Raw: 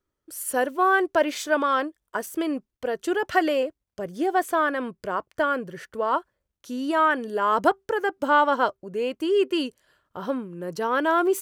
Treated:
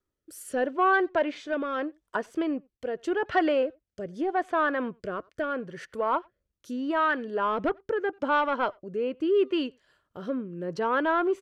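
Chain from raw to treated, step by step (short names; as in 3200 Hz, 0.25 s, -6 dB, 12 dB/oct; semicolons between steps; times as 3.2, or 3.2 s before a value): soft clip -13.5 dBFS, distortion -18 dB; rotary speaker horn 0.8 Hz; speakerphone echo 90 ms, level -27 dB; treble ducked by the level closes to 2900 Hz, closed at -28 dBFS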